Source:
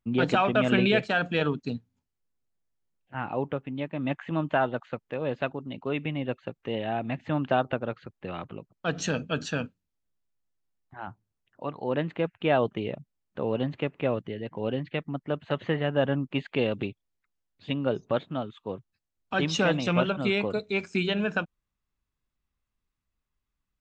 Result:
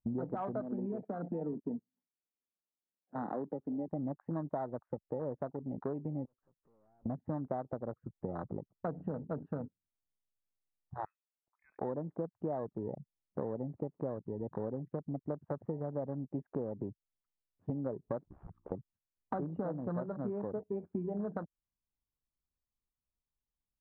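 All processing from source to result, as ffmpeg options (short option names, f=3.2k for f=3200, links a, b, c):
-filter_complex "[0:a]asettb=1/sr,asplit=3[a][b][c];[a]atrim=end=0.614[d];[b]atrim=start=0.61:end=3.88,asetpts=PTS-STARTPTS,afade=t=in:d=0.004:c=qsin,afade=t=out:st=3.266:d=0.004:c=qsin,equalizer=f=930:t=o:w=0.22:g=-6,acrossover=split=290|3000[e][f][g];[f]acompressor=threshold=-36dB:ratio=2.5:attack=3.2:release=140:knee=2.83:detection=peak[h];[e][h][g]amix=inputs=3:normalize=0,highpass=f=190:w=0.5412,highpass=f=190:w=1.3066[i];[c]atrim=start=3.876[j];[d][i]acrossfade=d=0.004:c1=hsin:c2=qsin[k];[k][j]acrossfade=d=0.004:c1=qsin:c2=hsin,asettb=1/sr,asplit=3[l][m][n];[l]atrim=end=6.254[o];[m]atrim=start=6.25:end=7.06,asetpts=PTS-STARTPTS,afade=t=in:d=0.004:c=qsin,afade=t=out:st=0.806:d=0.004:c=qsin,acompressor=threshold=-47dB:ratio=4:attack=3.2:release=140:knee=1:detection=peak,aeval=exprs='(tanh(631*val(0)+0.75)-tanh(0.75))/631':c=same[p];[n]atrim=start=7.056[q];[o][p]acrossfade=d=0.004:c1=hsin:c2=qsin[r];[r][q]acrossfade=d=0.004:c1=qsin:c2=hsin,asettb=1/sr,asplit=3[s][t][u];[s]atrim=end=11.054[v];[t]atrim=start=11.05:end=11.79,asetpts=PTS-STARTPTS,afade=t=in:d=0.004:c=qsin,afade=t=out:st=0.736:d=0.004:c=qsin,acompressor=threshold=-48dB:ratio=1.5:attack=3.2:release=140:knee=1:detection=peak,lowpass=f=2.3k:t=q:w=0.5098,lowpass=f=2.3k:t=q:w=0.6013,lowpass=f=2.3k:t=q:w=0.9,lowpass=f=2.3k:t=q:w=2.563,afreqshift=-2700[w];[u]atrim=start=11.786[x];[v][w]acrossfade=d=0.004:c1=hsin:c2=qsin[y];[y][x]acrossfade=d=0.004:c1=qsin:c2=hsin,asettb=1/sr,asplit=3[z][aa][ab];[z]atrim=end=18.234[ac];[aa]atrim=start=18.23:end=18.72,asetpts=PTS-STARTPTS,afade=t=in:d=0.004:c=qsin,afade=t=out:st=0.486:d=0.004:c=qsin,aeval=exprs='(mod(59.6*val(0)+1,2)-1)/59.6':c=same,aeval=exprs='val(0)+0.00126*(sin(2*PI*60*n/s)+sin(2*PI*2*60*n/s)/2+sin(2*PI*3*60*n/s)/3+sin(2*PI*4*60*n/s)/4+sin(2*PI*5*60*n/s)/5)':c=same,aeval=exprs='val(0)*sin(2*PI*35*n/s)':c=same[ad];[ab]atrim=start=18.716[ae];[ac][ad]acrossfade=d=0.004:c1=hsin:c2=qsin[af];[af][ae]acrossfade=d=0.004:c1=qsin:c2=hsin,lowpass=f=1.1k:w=0.5412,lowpass=f=1.1k:w=1.3066,afwtdn=0.0158,acompressor=threshold=-40dB:ratio=8,volume=5.5dB"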